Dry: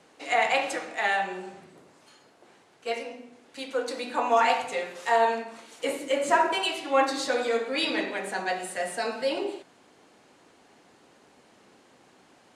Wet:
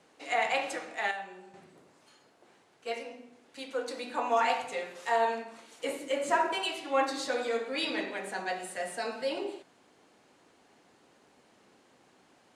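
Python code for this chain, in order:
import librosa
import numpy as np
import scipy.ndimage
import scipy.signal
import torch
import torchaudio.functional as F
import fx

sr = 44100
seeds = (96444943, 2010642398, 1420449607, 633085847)

y = fx.comb_fb(x, sr, f0_hz=200.0, decay_s=1.3, harmonics='all', damping=0.0, mix_pct=60, at=(1.11, 1.54))
y = y * 10.0 ** (-5.0 / 20.0)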